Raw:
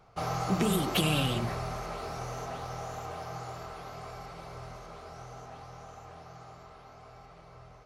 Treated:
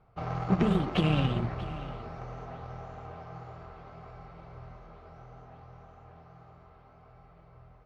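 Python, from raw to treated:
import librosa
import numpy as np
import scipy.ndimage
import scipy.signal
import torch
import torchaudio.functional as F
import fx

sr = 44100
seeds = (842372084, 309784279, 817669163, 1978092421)

y = fx.cheby_harmonics(x, sr, harmonics=(7,), levels_db=(-22,), full_scale_db=-13.5)
y = scipy.signal.sosfilt(scipy.signal.butter(2, 2600.0, 'lowpass', fs=sr, output='sos'), y)
y = fx.low_shelf(y, sr, hz=230.0, db=8.0)
y = y + 10.0 ** (-16.0 / 20.0) * np.pad(y, (int(636 * sr / 1000.0), 0))[:len(y)]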